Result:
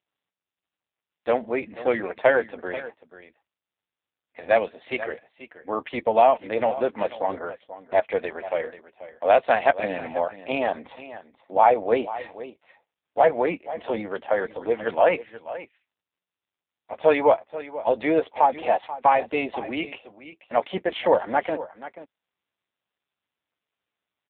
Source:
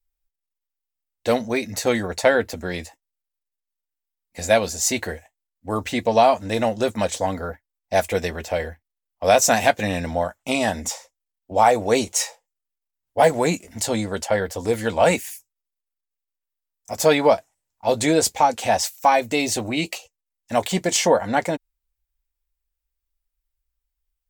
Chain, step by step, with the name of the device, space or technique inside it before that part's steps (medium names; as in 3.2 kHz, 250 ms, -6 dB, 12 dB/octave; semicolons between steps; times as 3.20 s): 4.60–5.76 s: dynamic bell 2.7 kHz, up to +5 dB, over -44 dBFS, Q 3.2; satellite phone (band-pass 330–3000 Hz; delay 485 ms -15 dB; AMR-NB 5.9 kbps 8 kHz)